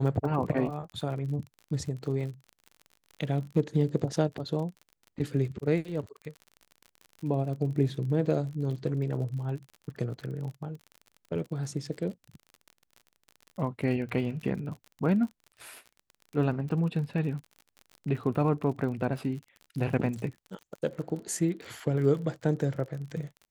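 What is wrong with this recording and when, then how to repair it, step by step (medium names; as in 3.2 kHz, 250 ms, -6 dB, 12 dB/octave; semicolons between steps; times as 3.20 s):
crackle 43 per s -38 dBFS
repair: de-click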